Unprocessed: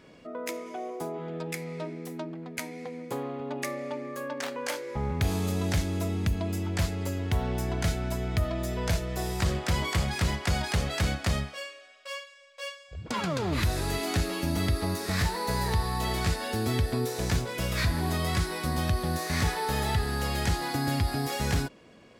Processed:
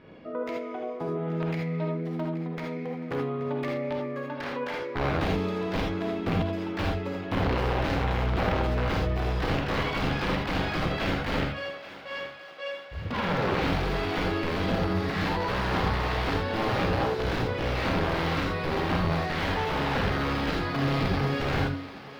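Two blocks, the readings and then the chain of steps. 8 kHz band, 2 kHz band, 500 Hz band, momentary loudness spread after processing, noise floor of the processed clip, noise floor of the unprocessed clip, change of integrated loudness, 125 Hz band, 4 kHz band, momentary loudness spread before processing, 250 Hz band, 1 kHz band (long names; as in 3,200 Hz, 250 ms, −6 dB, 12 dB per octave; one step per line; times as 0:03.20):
−13.5 dB, +3.5 dB, +4.5 dB, 7 LU, −43 dBFS, −53 dBFS, +1.5 dB, −0.5 dB, 0.0 dB, 10 LU, +3.0 dB, +4.0 dB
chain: hum removal 92.22 Hz, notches 16
in parallel at +0.5 dB: brickwall limiter −21.5 dBFS, peak gain reduction 7 dB
on the sum: wrap-around overflow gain 18 dB
high-frequency loss of the air 340 metres
on a send: feedback echo with a high-pass in the loop 828 ms, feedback 63%, high-pass 420 Hz, level −14.5 dB
on the sum: reverb whose tail is shaped and stops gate 100 ms rising, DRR 0.5 dB
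level −3 dB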